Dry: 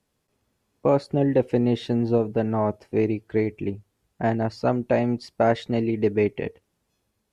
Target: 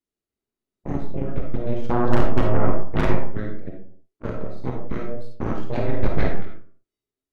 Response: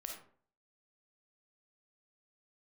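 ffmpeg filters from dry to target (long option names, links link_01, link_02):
-filter_complex "[0:a]asettb=1/sr,asplit=3[link_01][link_02][link_03];[link_01]atrim=end=1.844[link_04];[link_02]atrim=start=1.84:end=3.16,asetpts=PTS-STARTPTS,afade=type=in:duration=0.004:curve=qsin,afade=type=out:start_time=1.316:duration=0.004:curve=qsin,equalizer=frequency=125:width_type=o:width=1:gain=11,equalizer=frequency=250:width_type=o:width=1:gain=5,equalizer=frequency=500:width_type=o:width=1:gain=7,equalizer=frequency=1000:width_type=o:width=1:gain=5,equalizer=frequency=2000:width_type=o:width=1:gain=11[link_05];[link_03]atrim=start=3.156[link_06];[link_04][link_05]acrossfade=duration=0.004:curve1=hsin:curve2=qsin[link_07];[link_07][link_06]acrossfade=duration=0.004:curve1=qsin:curve2=hsin,asettb=1/sr,asplit=3[link_08][link_09][link_10];[link_08]atrim=end=5.684[link_11];[link_09]atrim=start=5.68:end=6.37,asetpts=PTS-STARTPTS,afade=type=in:duration=0.004:curve=qsin,afade=type=out:start_time=0.686:duration=0.004:curve=qsin,acontrast=57[link_12];[link_10]atrim=start=6.366[link_13];[link_11][link_12]acrossfade=duration=0.004:curve1=hsin:curve2=qsin[link_14];[link_14][link_13]acrossfade=duration=0.004:curve1=qsin:curve2=hsin,afreqshift=-480,aeval=exprs='0.668*(cos(1*acos(clip(val(0)/0.668,-1,1)))-cos(1*PI/2))+0.15*(cos(3*acos(clip(val(0)/0.668,-1,1)))-cos(3*PI/2))+0.237*(cos(6*acos(clip(val(0)/0.668,-1,1)))-cos(6*PI/2))':channel_layout=same[link_15];[1:a]atrim=start_sample=2205,afade=type=out:start_time=0.41:duration=0.01,atrim=end_sample=18522[link_16];[link_15][link_16]afir=irnorm=-1:irlink=0,volume=-4dB"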